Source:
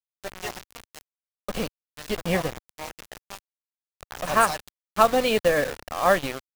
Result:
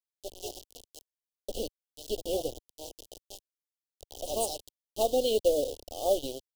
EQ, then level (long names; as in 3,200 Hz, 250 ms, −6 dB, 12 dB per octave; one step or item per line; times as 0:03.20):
Chebyshev band-stop filter 1,000–3,000 Hz, order 4
phaser with its sweep stopped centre 420 Hz, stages 4
−2.5 dB